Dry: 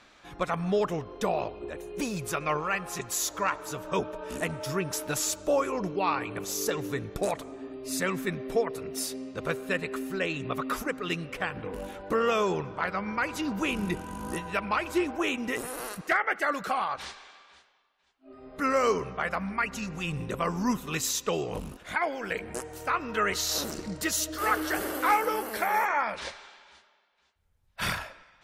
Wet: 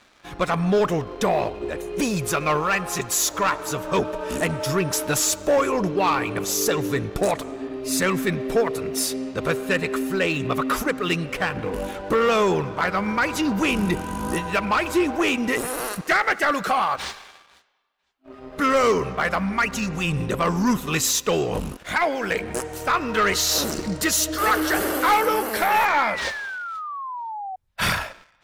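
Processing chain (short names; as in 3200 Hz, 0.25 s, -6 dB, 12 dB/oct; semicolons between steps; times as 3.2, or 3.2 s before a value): sample leveller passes 2; painted sound fall, 25.71–27.56, 740–2700 Hz -33 dBFS; gain +1.5 dB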